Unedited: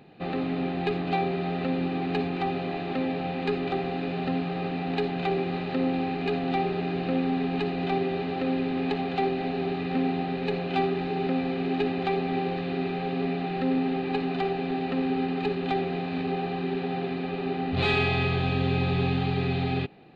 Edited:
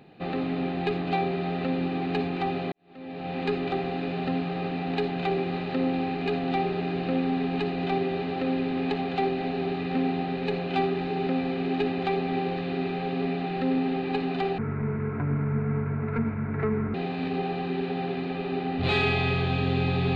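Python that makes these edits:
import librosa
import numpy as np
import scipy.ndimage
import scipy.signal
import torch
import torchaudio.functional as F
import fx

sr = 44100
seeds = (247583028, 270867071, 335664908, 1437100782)

y = fx.edit(x, sr, fx.fade_in_span(start_s=2.72, length_s=0.65, curve='qua'),
    fx.speed_span(start_s=14.58, length_s=1.3, speed=0.55), tone=tone)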